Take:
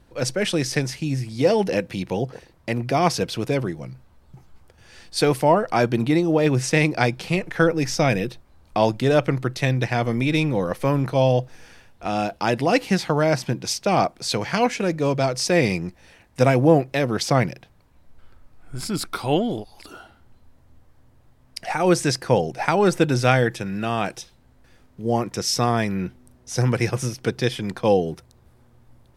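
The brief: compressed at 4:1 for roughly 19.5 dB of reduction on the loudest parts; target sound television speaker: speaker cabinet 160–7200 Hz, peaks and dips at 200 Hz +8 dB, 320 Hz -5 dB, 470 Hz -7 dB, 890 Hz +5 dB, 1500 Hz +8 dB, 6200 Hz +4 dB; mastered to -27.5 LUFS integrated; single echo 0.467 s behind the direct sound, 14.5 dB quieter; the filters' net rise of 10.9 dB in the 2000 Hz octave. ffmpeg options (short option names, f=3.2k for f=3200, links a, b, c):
-af "equalizer=f=2k:t=o:g=9,acompressor=threshold=-35dB:ratio=4,highpass=f=160:w=0.5412,highpass=f=160:w=1.3066,equalizer=f=200:t=q:w=4:g=8,equalizer=f=320:t=q:w=4:g=-5,equalizer=f=470:t=q:w=4:g=-7,equalizer=f=890:t=q:w=4:g=5,equalizer=f=1.5k:t=q:w=4:g=8,equalizer=f=6.2k:t=q:w=4:g=4,lowpass=f=7.2k:w=0.5412,lowpass=f=7.2k:w=1.3066,aecho=1:1:467:0.188,volume=7.5dB"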